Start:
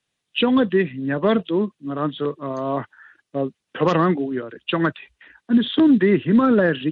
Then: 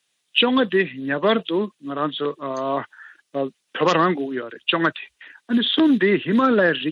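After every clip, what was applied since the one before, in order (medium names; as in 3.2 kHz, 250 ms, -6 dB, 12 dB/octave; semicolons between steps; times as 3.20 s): high-pass 340 Hz 6 dB/octave; treble shelf 2.5 kHz +8.5 dB; trim +1.5 dB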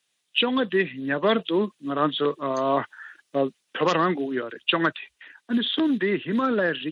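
gain riding within 4 dB 0.5 s; trim -3 dB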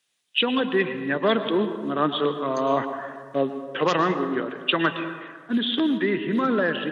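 reverberation RT60 1.7 s, pre-delay 99 ms, DRR 8.5 dB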